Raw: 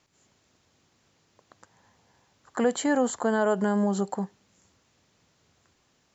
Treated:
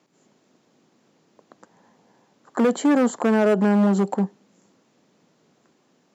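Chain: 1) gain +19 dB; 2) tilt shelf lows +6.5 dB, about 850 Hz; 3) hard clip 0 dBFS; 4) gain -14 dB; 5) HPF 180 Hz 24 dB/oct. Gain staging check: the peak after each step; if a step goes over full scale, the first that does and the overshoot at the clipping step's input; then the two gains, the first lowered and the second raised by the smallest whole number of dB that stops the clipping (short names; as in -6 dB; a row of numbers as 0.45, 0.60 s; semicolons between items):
+6.5, +9.0, 0.0, -14.0, -8.0 dBFS; step 1, 9.0 dB; step 1 +10 dB, step 4 -5 dB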